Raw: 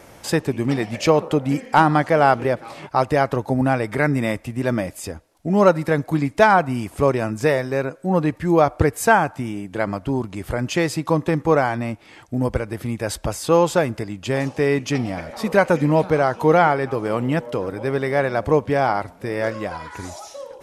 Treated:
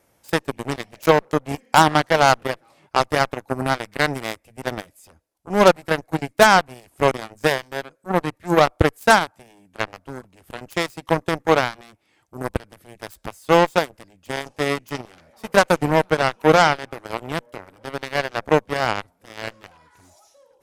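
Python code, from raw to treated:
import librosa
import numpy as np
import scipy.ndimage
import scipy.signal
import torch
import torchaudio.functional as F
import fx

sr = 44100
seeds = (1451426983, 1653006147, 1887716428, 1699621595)

y = fx.cheby_harmonics(x, sr, harmonics=(7,), levels_db=(-16,), full_scale_db=-2.5)
y = fx.high_shelf(y, sr, hz=9800.0, db=11.5)
y = F.gain(torch.from_numpy(y), 1.0).numpy()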